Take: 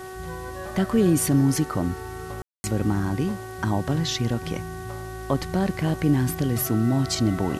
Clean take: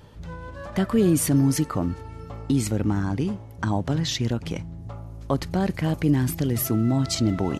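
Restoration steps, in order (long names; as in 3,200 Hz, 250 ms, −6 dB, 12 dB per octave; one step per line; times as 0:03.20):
hum removal 374.9 Hz, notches 5
ambience match 0:02.42–0:02.64
noise reduction from a noise print 6 dB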